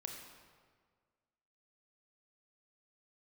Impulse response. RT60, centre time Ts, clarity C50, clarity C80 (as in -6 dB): 1.7 s, 53 ms, 3.5 dB, 5.0 dB